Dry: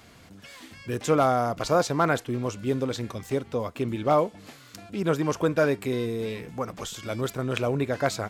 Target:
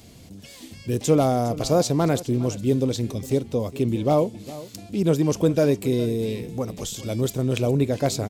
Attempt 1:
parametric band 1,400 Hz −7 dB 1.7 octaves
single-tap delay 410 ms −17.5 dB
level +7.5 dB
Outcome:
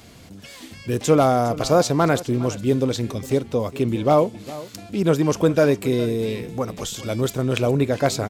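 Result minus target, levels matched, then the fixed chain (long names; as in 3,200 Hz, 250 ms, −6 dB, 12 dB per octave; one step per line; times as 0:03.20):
1,000 Hz band +3.5 dB
parametric band 1,400 Hz −17 dB 1.7 octaves
single-tap delay 410 ms −17.5 dB
level +7.5 dB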